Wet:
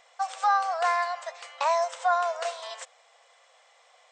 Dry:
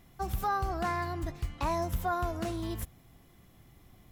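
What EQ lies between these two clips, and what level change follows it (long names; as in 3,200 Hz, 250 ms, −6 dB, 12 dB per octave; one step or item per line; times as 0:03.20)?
linear-phase brick-wall band-pass 460–8,900 Hz
+8.0 dB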